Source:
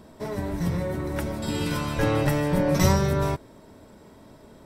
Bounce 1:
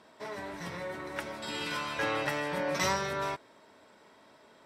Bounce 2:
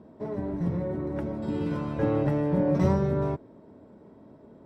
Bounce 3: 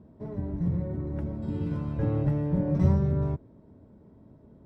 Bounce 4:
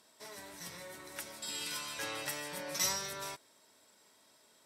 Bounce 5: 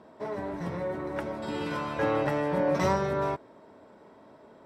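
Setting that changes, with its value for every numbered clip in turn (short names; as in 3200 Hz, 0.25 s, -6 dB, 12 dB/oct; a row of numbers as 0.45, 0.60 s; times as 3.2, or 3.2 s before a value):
band-pass, frequency: 2200, 290, 110, 7700, 830 Hz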